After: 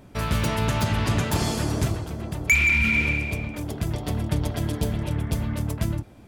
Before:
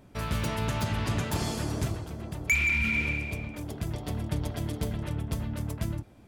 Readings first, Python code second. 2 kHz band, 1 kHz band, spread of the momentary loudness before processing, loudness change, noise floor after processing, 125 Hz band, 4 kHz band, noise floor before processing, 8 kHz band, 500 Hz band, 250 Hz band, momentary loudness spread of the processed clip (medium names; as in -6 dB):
+6.0 dB, +6.0 dB, 11 LU, +6.0 dB, -48 dBFS, +6.0 dB, +6.0 dB, -54 dBFS, +6.0 dB, +6.0 dB, +6.0 dB, 11 LU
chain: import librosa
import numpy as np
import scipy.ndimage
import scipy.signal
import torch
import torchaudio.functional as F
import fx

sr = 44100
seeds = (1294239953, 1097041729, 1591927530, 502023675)

y = fx.spec_repair(x, sr, seeds[0], start_s=4.65, length_s=0.89, low_hz=1000.0, high_hz=2300.0, source='both')
y = y * 10.0 ** (6.0 / 20.0)